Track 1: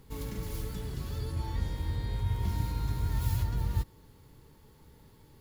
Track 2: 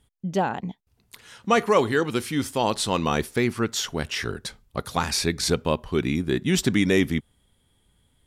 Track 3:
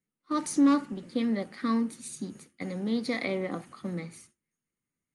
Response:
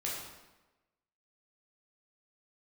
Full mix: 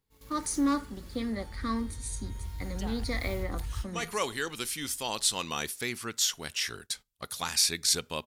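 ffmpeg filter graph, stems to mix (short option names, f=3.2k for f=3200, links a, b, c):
-filter_complex "[0:a]asubboost=boost=9:cutoff=67,volume=-12dB,asplit=2[a][b];[b]volume=-16.5dB[c];[1:a]highshelf=f=3.3k:g=11.5,adelay=2450,volume=-11.5dB[d];[2:a]equalizer=f=2.8k:w=2:g=-8,volume=-1.5dB,asplit=2[e][f];[f]apad=whole_len=472447[g];[d][g]sidechaincompress=threshold=-40dB:ratio=8:attack=41:release=131[h];[3:a]atrim=start_sample=2205[i];[c][i]afir=irnorm=-1:irlink=0[j];[a][h][e][j]amix=inputs=4:normalize=0,agate=range=-12dB:threshold=-46dB:ratio=16:detection=peak,tiltshelf=f=970:g=-4.5"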